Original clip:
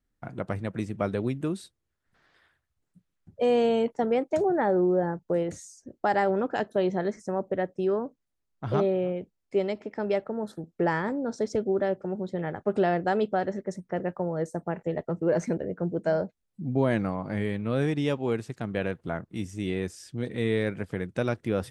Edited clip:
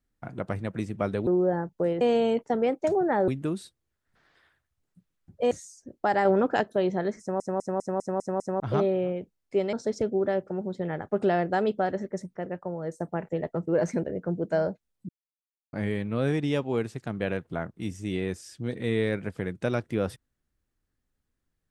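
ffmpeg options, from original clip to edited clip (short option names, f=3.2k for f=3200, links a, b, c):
-filter_complex "[0:a]asplit=19[a][b][c][d][e][f][g][h][i][j][k][l][m][n][o][p][q][r][s];[a]atrim=end=1.272[t];[b]atrim=start=4.768:end=5.512[u];[c]atrim=start=3.498:end=4.772[v];[d]atrim=start=1.268:end=3.502[w];[e]atrim=start=5.508:end=6.252[x];[f]atrim=start=6.248:end=6.612,asetpts=PTS-STARTPTS,volume=4dB[y];[g]atrim=start=6.608:end=7.402[z];[h]atrim=start=7.198:end=7.402[aa];[i]atrim=start=7.198:end=7.402[ab];[j]atrim=start=7.198:end=7.402[ac];[k]atrim=start=7.198:end=7.402[ad];[l]atrim=start=7.198:end=7.402[ae];[m]atrim=start=7.198:end=7.402[af];[n]atrim=start=8.598:end=9.732[ag];[o]atrim=start=11.268:end=13.892[ah];[p]atrim=start=13.888:end=14.542,asetpts=PTS-STARTPTS,volume=-4dB[ai];[q]atrim=start=14.538:end=16.63,asetpts=PTS-STARTPTS,afade=t=out:st=2.088:d=0.004:c=hsin[aj];[r]atrim=start=16.63:end=17.27,asetpts=PTS-STARTPTS,volume=0[ak];[s]atrim=start=17.27,asetpts=PTS-STARTPTS,afade=t=in:d=0.004:c=hsin[al];[t][u]acrossfade=d=0.004:c1=hsin:c2=hsin[am];[am][v]acrossfade=d=0.004:c1=hsin:c2=hsin[an];[an][w]acrossfade=d=0.004:c1=hsin:c2=hsin[ao];[ao][x]acrossfade=d=0.004:c1=hsin:c2=hsin[ap];[ap][y]acrossfade=d=0.004:c1=hsin:c2=hsin[aq];[aq][z]acrossfade=d=0.004:c1=hsin:c2=hsin[ar];[ar][aa]acrossfade=d=0.004:c1=hsin:c2=hsin[as];[as][ab]acrossfade=d=0.004:c1=hsin:c2=hsin[at];[at][ac]acrossfade=d=0.004:c1=hsin:c2=hsin[au];[au][ad]acrossfade=d=0.004:c1=hsin:c2=hsin[av];[av][ae]acrossfade=d=0.004:c1=hsin:c2=hsin[aw];[aw][af]acrossfade=d=0.004:c1=hsin:c2=hsin[ax];[ax][ag]acrossfade=d=0.004:c1=hsin:c2=hsin[ay];[ay][ah]acrossfade=d=0.004:c1=hsin:c2=hsin[az];[az][ai]acrossfade=d=0.004:c1=hsin:c2=hsin[ba];[aj][ak][al]concat=n=3:v=0:a=1[bb];[ba][bb]acrossfade=d=0.004:c1=hsin:c2=hsin"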